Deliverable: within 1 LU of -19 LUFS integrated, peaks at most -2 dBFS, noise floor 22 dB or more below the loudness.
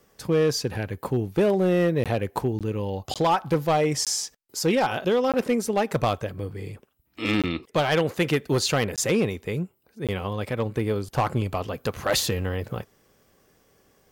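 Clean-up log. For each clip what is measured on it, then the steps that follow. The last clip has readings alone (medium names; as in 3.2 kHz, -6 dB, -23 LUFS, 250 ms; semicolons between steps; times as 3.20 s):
clipped samples 1.4%; clipping level -15.5 dBFS; dropouts 8; longest dropout 17 ms; loudness -25.0 LUFS; peak level -15.5 dBFS; loudness target -19.0 LUFS
-> clip repair -15.5 dBFS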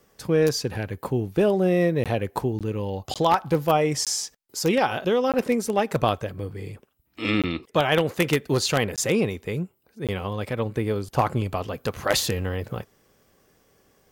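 clipped samples 0.0%; dropouts 8; longest dropout 17 ms
-> interpolate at 2.04/2.59/3.14/4.05/5.32/7.42/8.96/10.07 s, 17 ms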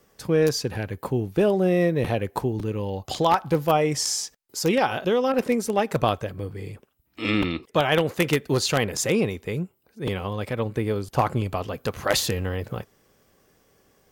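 dropouts 0; loudness -24.5 LUFS; peak level -6.5 dBFS; loudness target -19.0 LUFS
-> trim +5.5 dB; peak limiter -2 dBFS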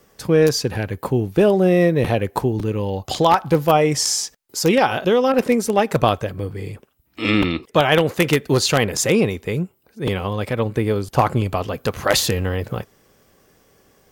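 loudness -19.0 LUFS; peak level -2.0 dBFS; noise floor -59 dBFS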